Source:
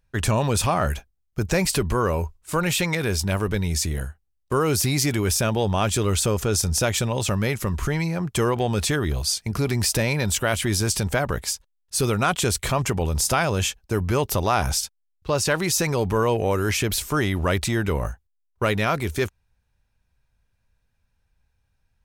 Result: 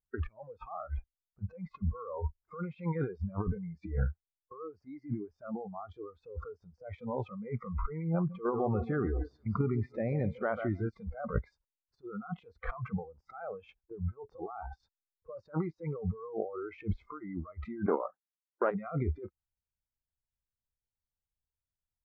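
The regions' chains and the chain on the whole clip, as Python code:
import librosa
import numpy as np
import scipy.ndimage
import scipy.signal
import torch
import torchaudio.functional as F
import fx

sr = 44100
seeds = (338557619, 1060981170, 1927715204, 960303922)

y = fx.chain(x, sr, fx.echo_split(split_hz=3000.0, low_ms=142, high_ms=236, feedback_pct=52, wet_db=-10.5),
    fx.level_steps(step_db=10), at=(8.15, 10.9))
y = fx.chain(y, sr, fx.highpass(hz=220.0, slope=24),
    fx.level_steps(step_db=9),
    fx.doppler_dist(depth_ms=0.18), at=(17.86, 18.71))
y = fx.over_compress(y, sr, threshold_db=-27.0, ratio=-0.5)
y = fx.noise_reduce_blind(y, sr, reduce_db=27)
y = scipy.signal.sosfilt(scipy.signal.butter(4, 1400.0, 'lowpass', fs=sr, output='sos'), y)
y = F.gain(torch.from_numpy(y), -3.5).numpy()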